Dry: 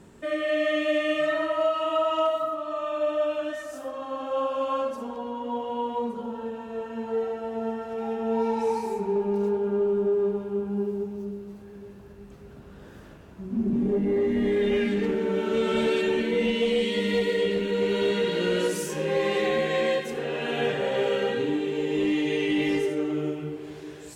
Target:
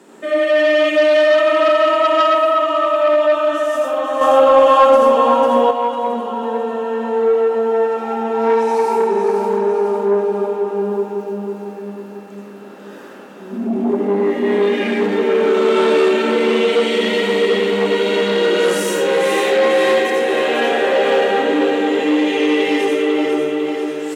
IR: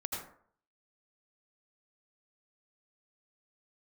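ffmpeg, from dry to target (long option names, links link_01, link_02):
-filter_complex "[0:a]aecho=1:1:498|996|1494|1992|2490|2988:0.501|0.251|0.125|0.0626|0.0313|0.0157[link_01];[1:a]atrim=start_sample=2205[link_02];[link_01][link_02]afir=irnorm=-1:irlink=0,asplit=2[link_03][link_04];[link_04]aeval=exprs='0.355*sin(PI/2*2.82*val(0)/0.355)':channel_layout=same,volume=-11.5dB[link_05];[link_03][link_05]amix=inputs=2:normalize=0,highpass=frequency=260:width=0.5412,highpass=frequency=260:width=1.3066,asettb=1/sr,asplit=3[link_06][link_07][link_08];[link_06]atrim=end=4.214[link_09];[link_07]atrim=start=4.21:end=5.71,asetpts=PTS-STARTPTS,afade=type=in:duration=0.004:curve=qsin,afade=type=out:start_time=1.496:duration=0.004:curve=qsin,acontrast=65[link_10];[link_08]atrim=start=5.706[link_11];[link_09][link_10]acrossfade=duration=0.004:curve1=hsin:curve2=qsin[link_12];[link_12][link_11]acrossfade=duration=0.004:curve1=qsin:curve2=hsin,volume=3dB"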